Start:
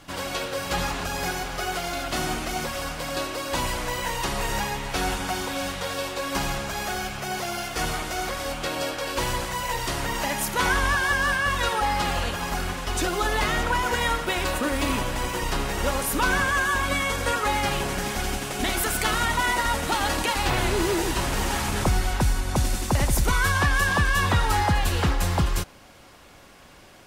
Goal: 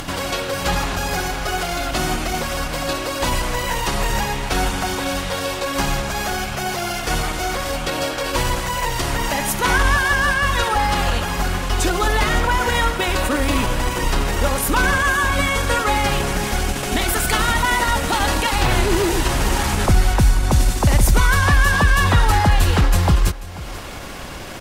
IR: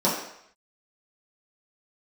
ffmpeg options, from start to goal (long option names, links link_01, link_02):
-filter_complex "[0:a]atempo=1.1,acontrast=79,lowshelf=frequency=100:gain=5,acompressor=mode=upward:threshold=-19dB:ratio=2.5,asplit=2[link_01][link_02];[link_02]aecho=0:1:488:0.133[link_03];[link_01][link_03]amix=inputs=2:normalize=0,volume=-1.5dB"